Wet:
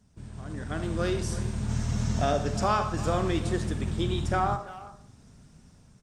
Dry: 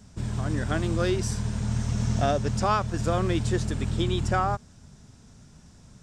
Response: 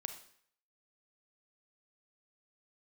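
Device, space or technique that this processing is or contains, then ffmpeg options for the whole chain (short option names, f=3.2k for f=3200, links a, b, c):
speakerphone in a meeting room: -filter_complex "[1:a]atrim=start_sample=2205[a];[0:a][a]afir=irnorm=-1:irlink=0,asplit=2[b][c];[c]adelay=340,highpass=300,lowpass=3.4k,asoftclip=type=hard:threshold=-23.5dB,volume=-14dB[d];[b][d]amix=inputs=2:normalize=0,dynaudnorm=f=320:g=5:m=10.5dB,volume=-9dB" -ar 48000 -c:a libopus -b:a 32k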